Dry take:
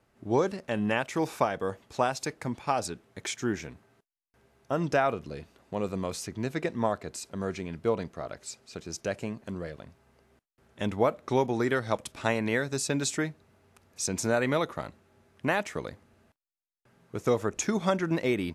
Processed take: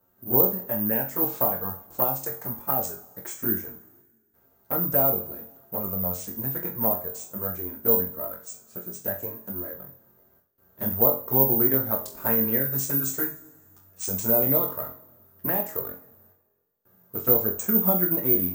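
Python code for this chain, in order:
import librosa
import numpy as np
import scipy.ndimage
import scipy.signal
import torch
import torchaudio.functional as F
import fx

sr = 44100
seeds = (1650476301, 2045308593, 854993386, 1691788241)

y = fx.band_shelf(x, sr, hz=3400.0, db=-14.5, octaves=1.7)
y = fx.env_flanger(y, sr, rest_ms=11.3, full_db=-22.5)
y = fx.room_flutter(y, sr, wall_m=3.8, rt60_s=0.23)
y = (np.kron(y[::3], np.eye(3)[0]) * 3)[:len(y)]
y = fx.rev_double_slope(y, sr, seeds[0], early_s=0.34, late_s=1.6, knee_db=-18, drr_db=6.0)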